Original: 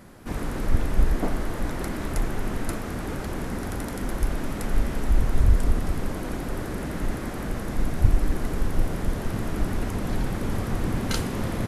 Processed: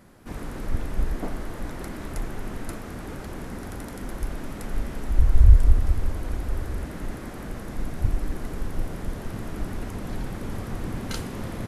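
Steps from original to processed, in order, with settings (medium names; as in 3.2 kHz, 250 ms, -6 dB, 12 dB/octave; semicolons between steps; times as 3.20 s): 5.18–6.85 s: resonant low shelf 110 Hz +9.5 dB, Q 1.5; trim -5 dB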